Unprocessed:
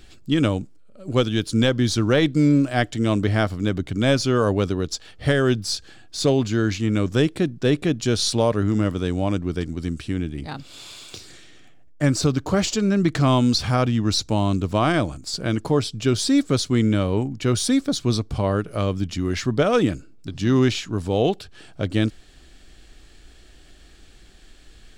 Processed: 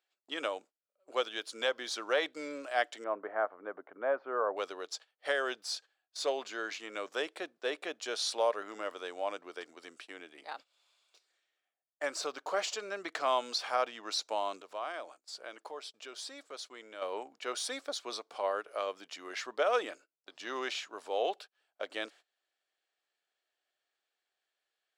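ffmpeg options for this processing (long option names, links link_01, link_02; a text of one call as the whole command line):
ffmpeg -i in.wav -filter_complex "[0:a]asettb=1/sr,asplit=3[link_01][link_02][link_03];[link_01]atrim=end=3.044[link_04];[link_02]atrim=start=3.04:end=4.57,asetpts=PTS-STARTPTS,afade=type=in:duration=0.004:curve=qsin,afade=type=out:start_time=1.526:duration=0.004:curve=qsin,lowpass=frequency=1500:width=0.5412,lowpass=frequency=1500:width=1.3066[link_05];[link_03]atrim=start=4.566[link_06];[link_04][link_05]acrossfade=duration=0.004:curve1=hsin:curve2=qsin[link_07];[link_07][link_06]acrossfade=duration=0.004:curve1=qsin:curve2=hsin,asettb=1/sr,asplit=3[link_08][link_09][link_10];[link_08]atrim=end=14.614[link_11];[link_09]atrim=start=14.61:end=17.02,asetpts=PTS-STARTPTS,afade=type=in:duration=0.004:curve=qsin,afade=type=out:start_time=2.406:duration=0.004:curve=qsin,acompressor=threshold=-32dB:ratio=2:attack=3.2:release=140:knee=1:detection=peak[link_12];[link_10]atrim=start=17.016[link_13];[link_11][link_12]acrossfade=duration=0.004:curve1=hsin:curve2=qsin[link_14];[link_14][link_13]acrossfade=duration=0.004:curve1=qsin:curve2=hsin,agate=range=-22dB:threshold=-34dB:ratio=16:detection=peak,highpass=frequency=550:width=0.5412,highpass=frequency=550:width=1.3066,highshelf=frequency=3500:gain=-8.5,volume=-5.5dB" out.wav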